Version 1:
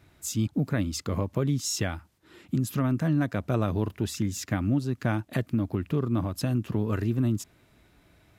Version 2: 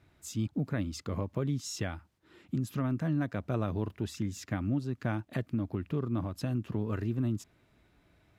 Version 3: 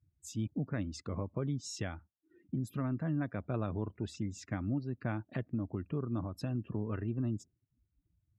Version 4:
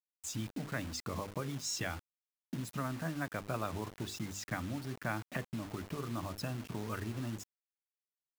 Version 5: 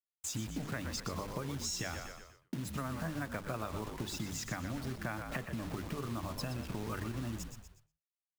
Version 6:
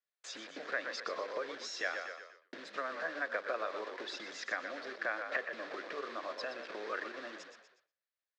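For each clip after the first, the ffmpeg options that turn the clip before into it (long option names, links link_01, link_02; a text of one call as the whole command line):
ffmpeg -i in.wav -af "highshelf=frequency=6500:gain=-8.5,volume=-5.5dB" out.wav
ffmpeg -i in.wav -af "afftdn=noise_reduction=31:noise_floor=-52,volume=-3.5dB" out.wav
ffmpeg -i in.wav -filter_complex "[0:a]acrossover=split=700|1400[link_01][link_02][link_03];[link_01]acompressor=threshold=-42dB:ratio=8[link_04];[link_04][link_02][link_03]amix=inputs=3:normalize=0,bandreject=frequency=50:width_type=h:width=6,bandreject=frequency=100:width_type=h:width=6,bandreject=frequency=150:width_type=h:width=6,bandreject=frequency=200:width_type=h:width=6,bandreject=frequency=250:width_type=h:width=6,bandreject=frequency=300:width_type=h:width=6,bandreject=frequency=350:width_type=h:width=6,bandreject=frequency=400:width_type=h:width=6,bandreject=frequency=450:width_type=h:width=6,bandreject=frequency=500:width_type=h:width=6,acrusher=bits=8:mix=0:aa=0.000001,volume=6dB" out.wav
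ffmpeg -i in.wav -filter_complex "[0:a]asplit=2[link_01][link_02];[link_02]asplit=5[link_03][link_04][link_05][link_06][link_07];[link_03]adelay=121,afreqshift=-54,volume=-9dB[link_08];[link_04]adelay=242,afreqshift=-108,volume=-15.6dB[link_09];[link_05]adelay=363,afreqshift=-162,volume=-22.1dB[link_10];[link_06]adelay=484,afreqshift=-216,volume=-28.7dB[link_11];[link_07]adelay=605,afreqshift=-270,volume=-35.2dB[link_12];[link_08][link_09][link_10][link_11][link_12]amix=inputs=5:normalize=0[link_13];[link_01][link_13]amix=inputs=2:normalize=0,acompressor=threshold=-38dB:ratio=6,agate=range=-33dB:threshold=-59dB:ratio=3:detection=peak,volume=3.5dB" out.wav
ffmpeg -i in.wav -af "highpass=frequency=420:width=0.5412,highpass=frequency=420:width=1.3066,equalizer=frequency=530:width_type=q:width=4:gain=5,equalizer=frequency=880:width_type=q:width=4:gain=-8,equalizer=frequency=1700:width_type=q:width=4:gain=7,equalizer=frequency=2900:width_type=q:width=4:gain=-5,lowpass=frequency=4600:width=0.5412,lowpass=frequency=4600:width=1.3066,volume=3.5dB" out.wav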